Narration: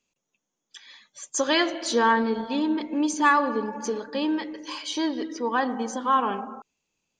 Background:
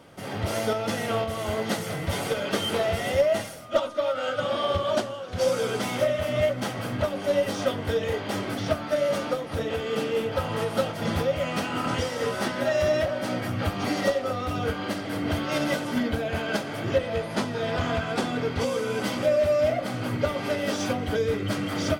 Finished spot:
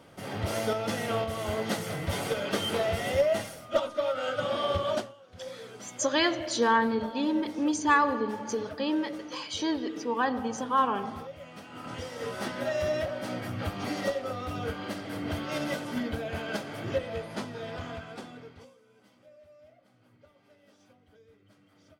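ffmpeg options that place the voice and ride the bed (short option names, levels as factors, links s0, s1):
-filter_complex "[0:a]adelay=4650,volume=0.708[s0];[1:a]volume=2.82,afade=t=out:st=4.9:d=0.24:silence=0.177828,afade=t=in:st=11.65:d=0.84:silence=0.251189,afade=t=out:st=16.93:d=1.83:silence=0.0398107[s1];[s0][s1]amix=inputs=2:normalize=0"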